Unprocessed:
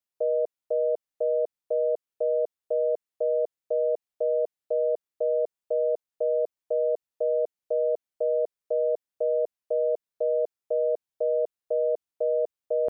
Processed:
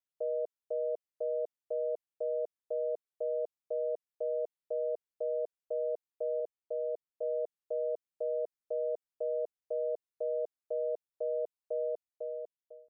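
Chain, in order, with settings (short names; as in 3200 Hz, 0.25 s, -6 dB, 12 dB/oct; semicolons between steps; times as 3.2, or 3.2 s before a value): ending faded out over 1.07 s; 6.4–7.23 air absorption 440 m; gain -8.5 dB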